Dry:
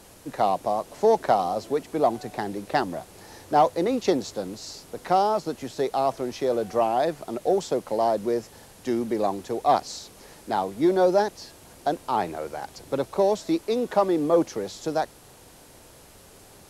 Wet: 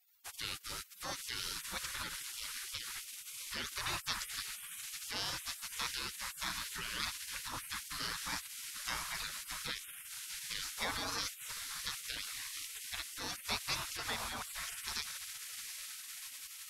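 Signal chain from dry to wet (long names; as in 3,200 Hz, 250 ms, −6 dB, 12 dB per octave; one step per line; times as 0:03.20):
feedback delay with all-pass diffusion 716 ms, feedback 71%, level −13.5 dB
brickwall limiter −17 dBFS, peak gain reduction 9 dB
gate on every frequency bin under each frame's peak −30 dB weak
level +7.5 dB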